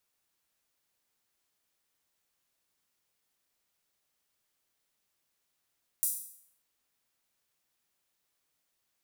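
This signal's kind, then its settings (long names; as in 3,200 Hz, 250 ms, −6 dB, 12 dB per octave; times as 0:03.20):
open synth hi-hat length 0.59 s, high-pass 9,200 Hz, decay 0.64 s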